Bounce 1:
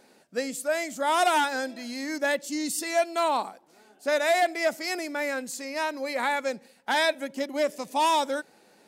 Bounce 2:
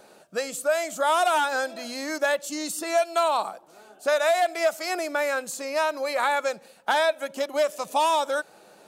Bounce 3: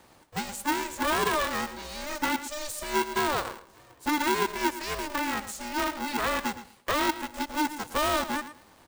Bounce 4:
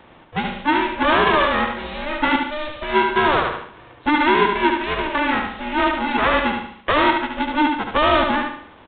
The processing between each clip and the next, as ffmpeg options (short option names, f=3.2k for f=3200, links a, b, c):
-filter_complex "[0:a]equalizer=f=250:t=o:w=0.33:g=-9,equalizer=f=630:t=o:w=0.33:g=6,equalizer=f=1.25k:t=o:w=0.33:g=6,equalizer=f=2k:t=o:w=0.33:g=-7,equalizer=f=5k:t=o:w=0.33:g=-4,acrossover=split=660|2100[a][b][c];[a]acompressor=threshold=-38dB:ratio=4[d];[b]acompressor=threshold=-28dB:ratio=4[e];[c]acompressor=threshold=-37dB:ratio=4[f];[d][e][f]amix=inputs=3:normalize=0,volume=5.5dB"
-af "aecho=1:1:114|228:0.224|0.0403,aeval=exprs='val(0)*sgn(sin(2*PI*300*n/s))':c=same,volume=-4.5dB"
-af "aecho=1:1:73|146|219|292|365:0.596|0.22|0.0815|0.0302|0.0112,aresample=8000,aresample=44100,volume=9dB"